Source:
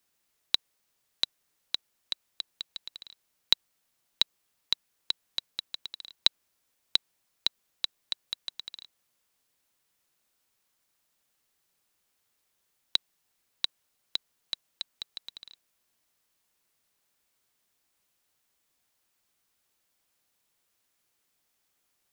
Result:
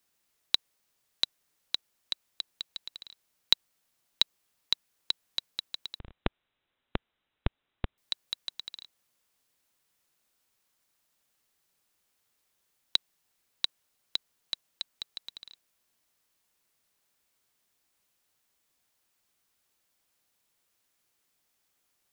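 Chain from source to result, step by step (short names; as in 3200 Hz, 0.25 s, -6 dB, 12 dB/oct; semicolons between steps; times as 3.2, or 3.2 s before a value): 5.99–7.98 inverted band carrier 3900 Hz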